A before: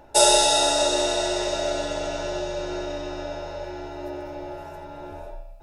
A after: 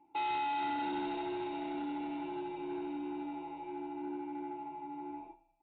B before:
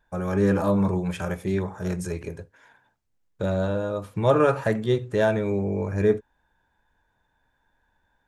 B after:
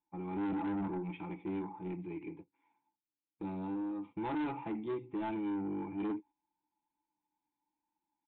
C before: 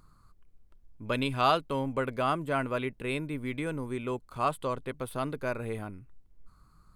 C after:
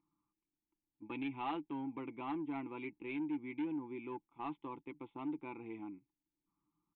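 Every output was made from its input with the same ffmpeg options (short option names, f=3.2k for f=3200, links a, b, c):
-filter_complex "[0:a]asplit=3[a][b][c];[a]bandpass=f=300:t=q:w=8,volume=0dB[d];[b]bandpass=f=870:t=q:w=8,volume=-6dB[e];[c]bandpass=f=2.24k:t=q:w=8,volume=-9dB[f];[d][e][f]amix=inputs=3:normalize=0,agate=range=-9dB:threshold=-54dB:ratio=16:detection=peak,aecho=1:1:5.9:0.41,aresample=8000,asoftclip=type=tanh:threshold=-35.5dB,aresample=44100,volume=3dB"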